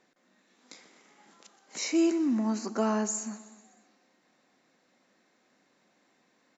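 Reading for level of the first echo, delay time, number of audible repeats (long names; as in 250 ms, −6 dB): −17.5 dB, 125 ms, 4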